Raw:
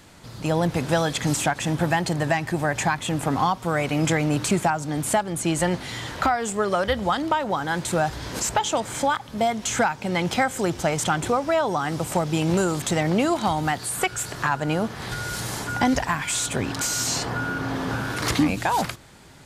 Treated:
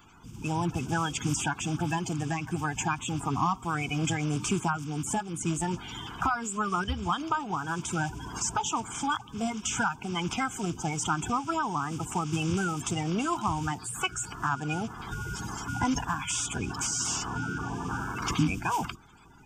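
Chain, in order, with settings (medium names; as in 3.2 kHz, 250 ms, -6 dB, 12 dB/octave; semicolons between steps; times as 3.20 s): coarse spectral quantiser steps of 30 dB; static phaser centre 2.8 kHz, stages 8; trim -2.5 dB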